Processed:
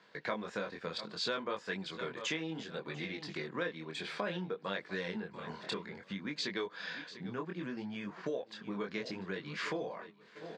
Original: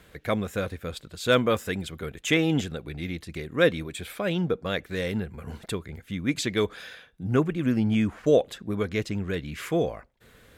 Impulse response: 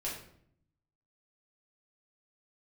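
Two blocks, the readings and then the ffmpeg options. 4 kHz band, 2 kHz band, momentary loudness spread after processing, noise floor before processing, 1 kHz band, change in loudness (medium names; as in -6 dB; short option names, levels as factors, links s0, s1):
-7.0 dB, -8.0 dB, 6 LU, -56 dBFS, -7.5 dB, -12.0 dB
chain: -filter_complex "[0:a]asplit=2[s0][s1];[s1]aecho=0:1:694|1388|2082:0.0891|0.0401|0.018[s2];[s0][s2]amix=inputs=2:normalize=0,flanger=delay=20:depth=5.4:speed=0.63,acompressor=threshold=0.0178:ratio=10,highpass=f=170:w=0.5412,highpass=f=170:w=1.3066,equalizer=f=260:t=q:w=4:g=-5,equalizer=f=970:t=q:w=4:g=10,equalizer=f=1700:t=q:w=4:g=5,equalizer=f=4600:t=q:w=4:g=8,lowpass=f=6000:w=0.5412,lowpass=f=6000:w=1.3066,agate=range=0.447:threshold=0.00251:ratio=16:detection=peak,volume=1.12"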